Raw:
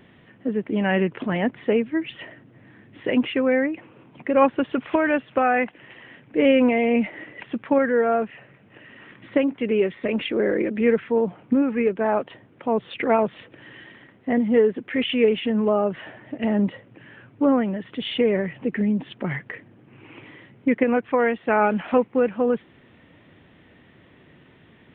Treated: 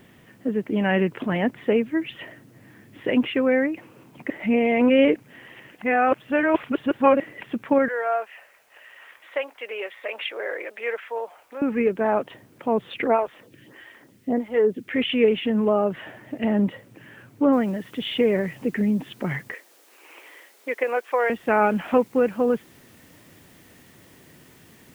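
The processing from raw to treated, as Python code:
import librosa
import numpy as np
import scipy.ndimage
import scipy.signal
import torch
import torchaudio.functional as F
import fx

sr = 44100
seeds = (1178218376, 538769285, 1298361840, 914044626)

y = fx.highpass(x, sr, hz=600.0, slope=24, at=(7.88, 11.62))
y = fx.stagger_phaser(y, sr, hz=1.6, at=(13.07, 14.89))
y = fx.noise_floor_step(y, sr, seeds[0], at_s=17.53, before_db=-66, after_db=-57, tilt_db=0.0)
y = fx.highpass(y, sr, hz=460.0, slope=24, at=(19.54, 21.3))
y = fx.edit(y, sr, fx.reverse_span(start_s=4.3, length_s=2.9), tone=tone)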